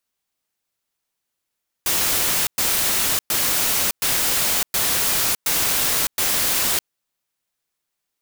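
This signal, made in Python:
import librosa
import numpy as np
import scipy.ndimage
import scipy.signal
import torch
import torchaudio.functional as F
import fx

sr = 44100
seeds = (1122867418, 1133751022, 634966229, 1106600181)

y = fx.noise_burst(sr, seeds[0], colour='white', on_s=0.61, off_s=0.11, bursts=7, level_db=-20.0)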